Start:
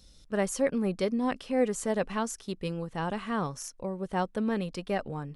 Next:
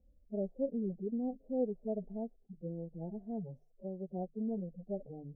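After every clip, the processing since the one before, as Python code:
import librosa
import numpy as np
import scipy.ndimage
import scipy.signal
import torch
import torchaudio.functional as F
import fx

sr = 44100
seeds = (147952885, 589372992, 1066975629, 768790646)

y = fx.hpss_only(x, sr, part='harmonic')
y = scipy.signal.sosfilt(scipy.signal.ellip(4, 1.0, 40, 700.0, 'lowpass', fs=sr, output='sos'), y)
y = fx.hum_notches(y, sr, base_hz=50, count=3)
y = y * librosa.db_to_amplitude(-6.5)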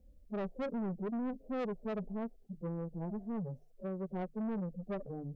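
y = 10.0 ** (-39.5 / 20.0) * np.tanh(x / 10.0 ** (-39.5 / 20.0))
y = y * librosa.db_to_amplitude(6.0)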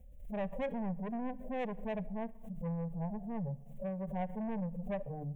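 y = fx.fixed_phaser(x, sr, hz=1300.0, stages=6)
y = fx.room_shoebox(y, sr, seeds[0], volume_m3=3300.0, walls='furnished', distance_m=0.37)
y = fx.pre_swell(y, sr, db_per_s=74.0)
y = y * librosa.db_to_amplitude(4.5)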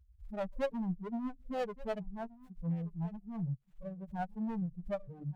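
y = fx.bin_expand(x, sr, power=3.0)
y = y + 10.0 ** (-20.0 / 20.0) * np.pad(y, (int(1174 * sr / 1000.0), 0))[:len(y)]
y = fx.running_max(y, sr, window=9)
y = y * librosa.db_to_amplitude(6.0)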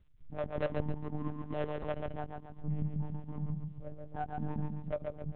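y = fx.dmg_crackle(x, sr, seeds[1], per_s=180.0, level_db=-61.0)
y = fx.echo_feedback(y, sr, ms=136, feedback_pct=41, wet_db=-4)
y = fx.lpc_monotone(y, sr, seeds[2], pitch_hz=150.0, order=10)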